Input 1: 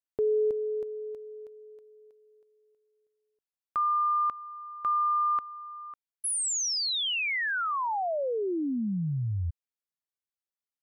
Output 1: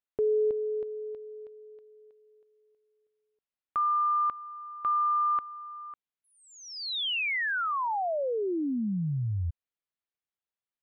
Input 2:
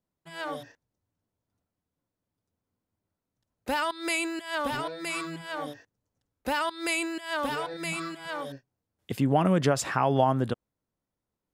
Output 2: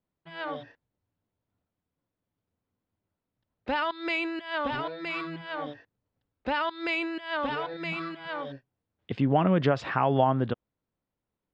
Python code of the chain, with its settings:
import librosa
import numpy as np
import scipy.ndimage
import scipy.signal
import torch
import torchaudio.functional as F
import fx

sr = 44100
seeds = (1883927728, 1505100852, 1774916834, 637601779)

y = scipy.signal.sosfilt(scipy.signal.butter(4, 3800.0, 'lowpass', fs=sr, output='sos'), x)